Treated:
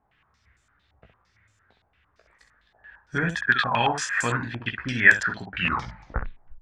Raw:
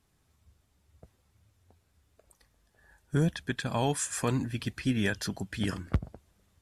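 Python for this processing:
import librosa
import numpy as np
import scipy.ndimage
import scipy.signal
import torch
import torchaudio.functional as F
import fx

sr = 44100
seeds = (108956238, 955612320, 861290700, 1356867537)

y = fx.tape_stop_end(x, sr, length_s=1.16)
y = fx.peak_eq(y, sr, hz=1700.0, db=14.0, octaves=1.5)
y = fx.spec_paint(y, sr, seeds[0], shape='fall', start_s=3.51, length_s=0.39, low_hz=680.0, high_hz=1500.0, level_db=-28.0)
y = fx.room_early_taps(y, sr, ms=(17, 65), db=(-5.0, -7.0))
y = fx.filter_held_lowpass(y, sr, hz=8.8, low_hz=790.0, high_hz=7300.0)
y = y * 10.0 ** (-3.5 / 20.0)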